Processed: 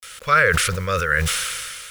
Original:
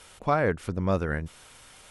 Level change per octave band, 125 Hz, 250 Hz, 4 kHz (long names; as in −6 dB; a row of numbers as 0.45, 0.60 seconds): +4.5, −2.5, +22.5 decibels